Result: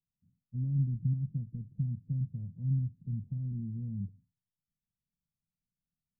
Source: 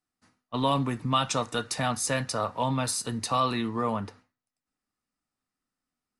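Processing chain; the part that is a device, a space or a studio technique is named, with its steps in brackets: the neighbour's flat through the wall (LPF 160 Hz 24 dB/oct; bell 170 Hz +8 dB 0.66 oct)

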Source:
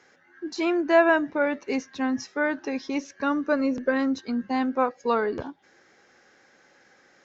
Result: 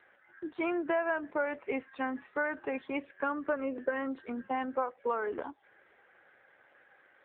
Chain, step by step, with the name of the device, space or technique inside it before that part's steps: voicemail (BPF 420–2800 Hz; compressor 6:1, threshold -27 dBFS, peak gain reduction 12.5 dB; AMR-NB 7.4 kbps 8000 Hz)

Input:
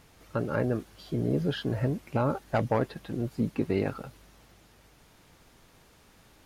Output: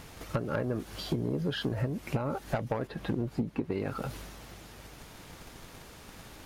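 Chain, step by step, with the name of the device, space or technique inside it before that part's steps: drum-bus smash (transient shaper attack +8 dB, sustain +4 dB; compressor 16:1, threshold -34 dBFS, peak gain reduction 19.5 dB; soft clip -29 dBFS, distortion -16 dB); 2.87–3.72 high shelf 3600 Hz -9.5 dB; gain +8.5 dB

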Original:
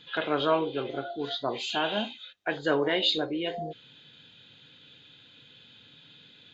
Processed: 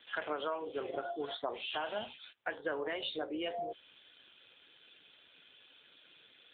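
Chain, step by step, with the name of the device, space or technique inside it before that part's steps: voicemail (BPF 430–2900 Hz; compressor 10:1, threshold -33 dBFS, peak gain reduction 13.5 dB; gain +1 dB; AMR-NB 7.4 kbps 8000 Hz)

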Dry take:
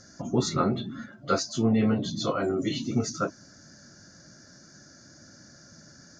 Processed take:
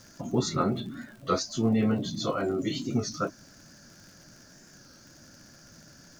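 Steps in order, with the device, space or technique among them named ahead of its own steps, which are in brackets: warped LP (record warp 33 1/3 rpm, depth 100 cents; crackle 77/s -41 dBFS; pink noise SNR 32 dB); gain -1.5 dB

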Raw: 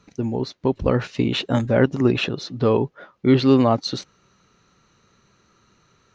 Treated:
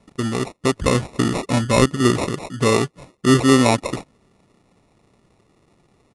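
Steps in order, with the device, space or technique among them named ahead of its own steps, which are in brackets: crushed at another speed (playback speed 2×; sample-and-hold 14×; playback speed 0.5×); gain +1.5 dB

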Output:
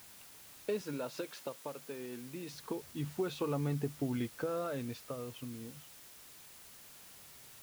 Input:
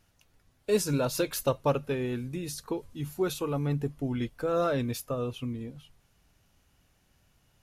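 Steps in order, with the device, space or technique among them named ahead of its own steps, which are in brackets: medium wave at night (BPF 110–3800 Hz; compressor, threshold -33 dBFS, peak gain reduction 12.5 dB; tremolo 0.27 Hz, depth 64%; whine 10000 Hz -69 dBFS; white noise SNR 15 dB); 0.81–2.54 HPF 200 Hz 12 dB/oct; gain +2 dB

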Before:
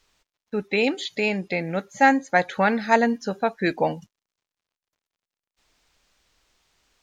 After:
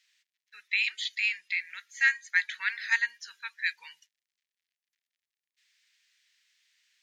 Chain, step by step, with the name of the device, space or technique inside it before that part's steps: elliptic high-pass 1800 Hz, stop band 60 dB; inside a helmet (high shelf 4900 Hz -7 dB; small resonant body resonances 340/940 Hz, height 17 dB, ringing for 30 ms); gain +1 dB

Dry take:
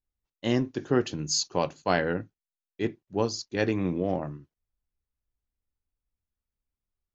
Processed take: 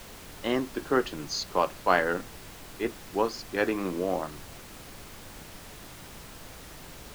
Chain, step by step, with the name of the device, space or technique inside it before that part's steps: horn gramophone (BPF 270–4100 Hz; bell 1200 Hz +8 dB; wow and flutter; pink noise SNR 13 dB)

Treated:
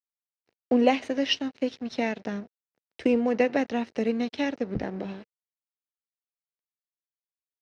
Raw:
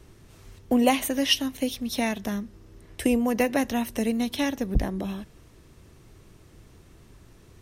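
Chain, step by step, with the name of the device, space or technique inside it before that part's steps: blown loudspeaker (crossover distortion -39.5 dBFS; speaker cabinet 150–4700 Hz, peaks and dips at 470 Hz +4 dB, 1100 Hz -6 dB, 3400 Hz -7 dB)

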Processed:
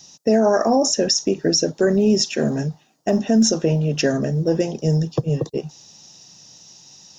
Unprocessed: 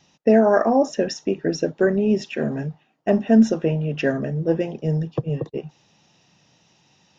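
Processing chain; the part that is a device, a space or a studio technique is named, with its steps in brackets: over-bright horn tweeter (resonant high shelf 3800 Hz +13.5 dB, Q 1.5; limiter -12.5 dBFS, peak gain reduction 8.5 dB); gain +4 dB

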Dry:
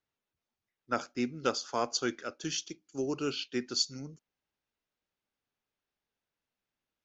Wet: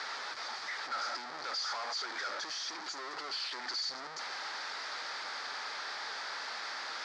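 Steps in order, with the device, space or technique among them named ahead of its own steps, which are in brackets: home computer beeper (infinite clipping; speaker cabinet 730–5400 Hz, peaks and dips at 850 Hz +4 dB, 1300 Hz +6 dB, 1800 Hz +5 dB, 2800 Hz -9 dB, 4700 Hz +8 dB)

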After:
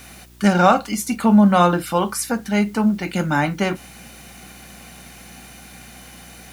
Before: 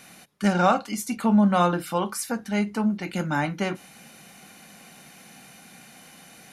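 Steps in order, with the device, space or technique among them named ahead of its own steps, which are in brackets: video cassette with head-switching buzz (buzz 60 Hz, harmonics 6, -54 dBFS -6 dB/oct; white noise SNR 34 dB); gain +6 dB

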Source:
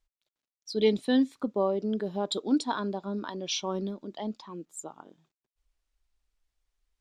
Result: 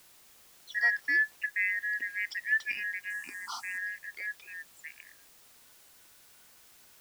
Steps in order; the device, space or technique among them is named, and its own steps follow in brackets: split-band scrambled radio (four-band scrambler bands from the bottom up 2143; BPF 380–3300 Hz; white noise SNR 23 dB); 3.1–3.78 graphic EQ 250/500/1000/2000/4000/8000 Hz +9/-11/+11/-5/-6/+11 dB; gain -3 dB

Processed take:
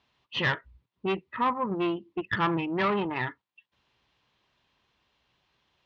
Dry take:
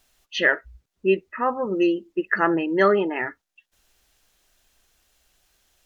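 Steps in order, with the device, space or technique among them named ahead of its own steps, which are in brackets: guitar amplifier (tube stage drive 19 dB, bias 0.6; tone controls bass +5 dB, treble +5 dB; speaker cabinet 110–3600 Hz, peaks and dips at 120 Hz +6 dB, 680 Hz -4 dB, 1000 Hz +9 dB, 1500 Hz -4 dB); dynamic EQ 430 Hz, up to -6 dB, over -35 dBFS, Q 0.95

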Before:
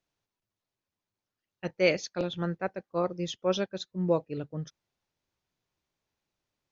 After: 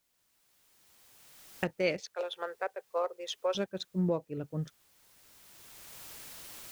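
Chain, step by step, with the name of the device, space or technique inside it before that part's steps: Wiener smoothing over 9 samples; 2–3.55 elliptic high-pass 420 Hz, stop band 40 dB; cheap recorder with automatic gain (white noise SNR 37 dB; recorder AGC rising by 16 dB/s); gain -6 dB

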